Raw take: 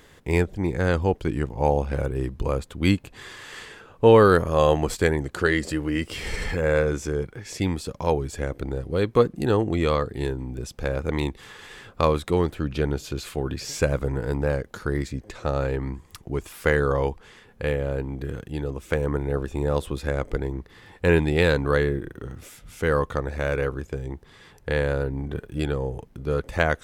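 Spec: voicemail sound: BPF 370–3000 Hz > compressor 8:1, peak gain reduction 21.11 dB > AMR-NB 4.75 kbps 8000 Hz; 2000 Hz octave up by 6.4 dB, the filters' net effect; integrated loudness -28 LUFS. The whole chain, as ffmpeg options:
-af "highpass=370,lowpass=3k,equalizer=f=2k:t=o:g=9,acompressor=threshold=-33dB:ratio=8,volume=12.5dB" -ar 8000 -c:a libopencore_amrnb -b:a 4750

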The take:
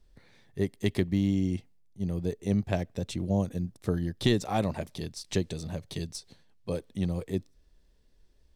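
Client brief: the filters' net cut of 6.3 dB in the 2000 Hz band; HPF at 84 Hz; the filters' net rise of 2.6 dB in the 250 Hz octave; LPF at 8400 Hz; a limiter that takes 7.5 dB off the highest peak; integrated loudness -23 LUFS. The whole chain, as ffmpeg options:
-af "highpass=84,lowpass=8.4k,equalizer=f=250:t=o:g=4,equalizer=f=2k:t=o:g=-8,volume=9dB,alimiter=limit=-9dB:level=0:latency=1"

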